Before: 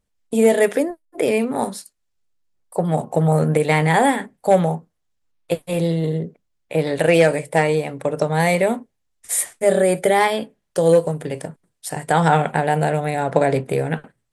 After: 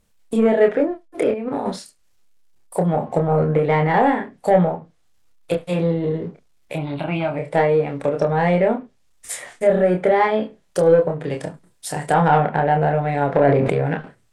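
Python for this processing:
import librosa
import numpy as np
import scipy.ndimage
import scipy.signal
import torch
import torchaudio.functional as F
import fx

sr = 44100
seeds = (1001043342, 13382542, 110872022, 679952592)

y = fx.law_mismatch(x, sr, coded='mu')
y = fx.env_lowpass_down(y, sr, base_hz=1800.0, full_db=-15.5)
y = fx.over_compress(y, sr, threshold_db=-26.0, ratio=-1.0, at=(1.31, 1.76))
y = fx.fixed_phaser(y, sr, hz=1800.0, stages=6, at=(6.74, 7.36), fade=0.02)
y = 10.0 ** (-6.5 / 20.0) * np.tanh(y / 10.0 ** (-6.5 / 20.0))
y = fx.doubler(y, sr, ms=28.0, db=-4.5)
y = y + 10.0 ** (-24.0 / 20.0) * np.pad(y, (int(71 * sr / 1000.0), 0))[:len(y)]
y = fx.sustainer(y, sr, db_per_s=28.0, at=(13.4, 13.92))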